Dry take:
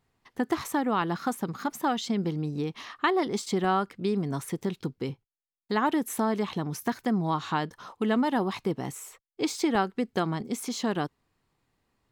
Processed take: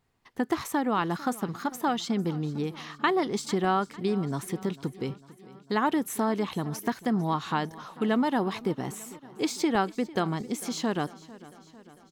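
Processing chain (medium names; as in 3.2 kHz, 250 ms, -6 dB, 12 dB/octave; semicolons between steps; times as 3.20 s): feedback delay 449 ms, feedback 60%, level -19.5 dB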